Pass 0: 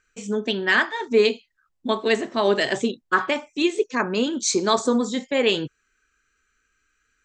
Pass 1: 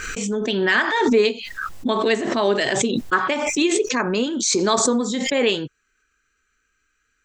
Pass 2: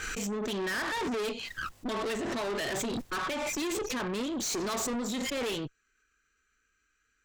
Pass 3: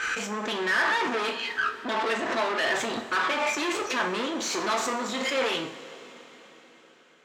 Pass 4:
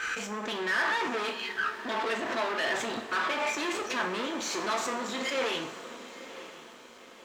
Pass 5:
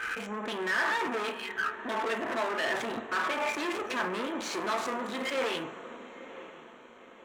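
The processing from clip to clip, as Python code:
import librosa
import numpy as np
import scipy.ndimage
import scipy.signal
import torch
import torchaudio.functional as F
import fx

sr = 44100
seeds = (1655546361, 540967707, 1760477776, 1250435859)

y1 = fx.pre_swell(x, sr, db_per_s=30.0)
y2 = fx.tube_stage(y1, sr, drive_db=28.0, bias=0.55)
y2 = y2 * librosa.db_to_amplitude(-2.5)
y3 = fx.bandpass_q(y2, sr, hz=1400.0, q=0.57)
y3 = fx.rev_double_slope(y3, sr, seeds[0], early_s=0.39, late_s=4.8, knee_db=-18, drr_db=3.5)
y3 = y3 * librosa.db_to_amplitude(8.5)
y4 = fx.echo_diffused(y3, sr, ms=955, feedback_pct=54, wet_db=-14.0)
y4 = np.sign(y4) * np.maximum(np.abs(y4) - 10.0 ** (-55.0 / 20.0), 0.0)
y4 = y4 * librosa.db_to_amplitude(-3.5)
y5 = fx.wiener(y4, sr, points=9)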